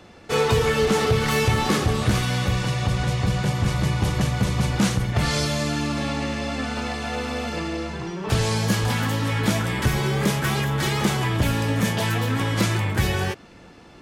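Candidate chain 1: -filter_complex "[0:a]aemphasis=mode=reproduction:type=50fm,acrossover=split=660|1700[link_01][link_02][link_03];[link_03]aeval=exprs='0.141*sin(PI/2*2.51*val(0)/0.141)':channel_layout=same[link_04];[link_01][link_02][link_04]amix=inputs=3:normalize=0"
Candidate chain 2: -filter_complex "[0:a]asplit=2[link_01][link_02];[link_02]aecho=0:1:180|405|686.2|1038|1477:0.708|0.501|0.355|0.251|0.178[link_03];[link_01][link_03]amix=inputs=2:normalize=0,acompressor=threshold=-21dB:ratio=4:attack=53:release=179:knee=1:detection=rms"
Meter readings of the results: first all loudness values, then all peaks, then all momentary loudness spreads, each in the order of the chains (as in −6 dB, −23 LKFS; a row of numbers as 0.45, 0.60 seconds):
−20.0, −23.0 LKFS; −7.5, −10.0 dBFS; 6, 3 LU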